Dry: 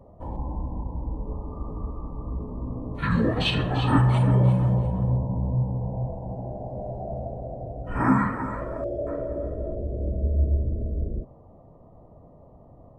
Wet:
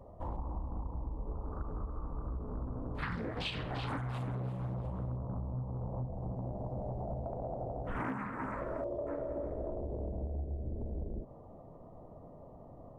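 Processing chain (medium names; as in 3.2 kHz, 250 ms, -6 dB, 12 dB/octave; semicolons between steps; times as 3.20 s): peaking EQ 190 Hz -5 dB 2.4 oct, from 6.00 s 830 Hz, from 7.26 s 66 Hz; compression 12:1, threshold -34 dBFS, peak gain reduction 18.5 dB; loudspeaker Doppler distortion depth 0.56 ms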